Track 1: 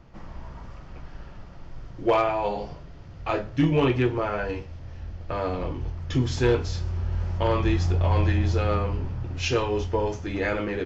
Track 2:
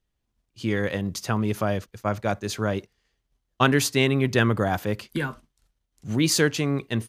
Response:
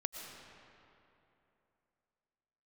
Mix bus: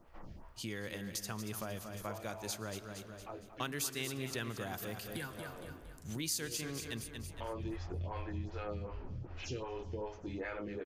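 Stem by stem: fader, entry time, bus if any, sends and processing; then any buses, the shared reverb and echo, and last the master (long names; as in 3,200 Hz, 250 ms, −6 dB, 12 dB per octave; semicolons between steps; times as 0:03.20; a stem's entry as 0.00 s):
−5.5 dB, 0.00 s, no send, echo send −24 dB, phaser with staggered stages 2.6 Hz; automatic ducking −12 dB, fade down 0.25 s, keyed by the second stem
+1.0 dB, 0.00 s, send −9 dB, echo send −8 dB, first-order pre-emphasis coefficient 0.8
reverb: on, RT60 3.0 s, pre-delay 75 ms
echo: repeating echo 231 ms, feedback 42%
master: downward compressor 2.5 to 1, threshold −41 dBFS, peak gain reduction 15 dB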